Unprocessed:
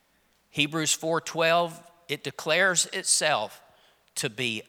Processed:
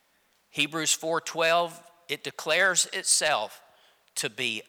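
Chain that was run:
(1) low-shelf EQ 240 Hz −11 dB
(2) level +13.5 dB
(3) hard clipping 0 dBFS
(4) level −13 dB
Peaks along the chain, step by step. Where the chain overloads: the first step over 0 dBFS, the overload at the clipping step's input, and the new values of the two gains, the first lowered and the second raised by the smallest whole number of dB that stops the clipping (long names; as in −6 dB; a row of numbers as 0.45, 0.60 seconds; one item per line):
−8.0, +5.5, 0.0, −13.0 dBFS
step 2, 5.5 dB
step 2 +7.5 dB, step 4 −7 dB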